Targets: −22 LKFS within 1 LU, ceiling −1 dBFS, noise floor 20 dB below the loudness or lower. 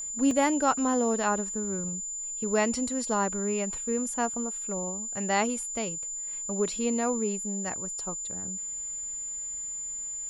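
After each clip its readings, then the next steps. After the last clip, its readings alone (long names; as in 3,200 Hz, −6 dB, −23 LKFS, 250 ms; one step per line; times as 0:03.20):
number of dropouts 1; longest dropout 1.8 ms; interfering tone 7,100 Hz; level of the tone −33 dBFS; integrated loudness −29.0 LKFS; sample peak −12.0 dBFS; target loudness −22.0 LKFS
→ repair the gap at 0:00.31, 1.8 ms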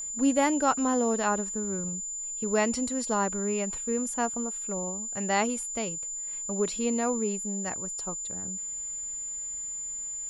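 number of dropouts 0; interfering tone 7,100 Hz; level of the tone −33 dBFS
→ notch filter 7,100 Hz, Q 30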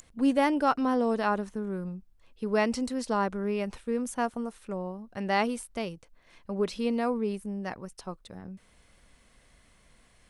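interfering tone none found; integrated loudness −30.0 LKFS; sample peak −12.0 dBFS; target loudness −22.0 LKFS
→ level +8 dB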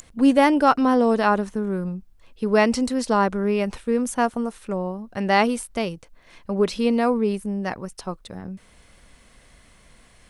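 integrated loudness −22.0 LKFS; sample peak −4.0 dBFS; background noise floor −54 dBFS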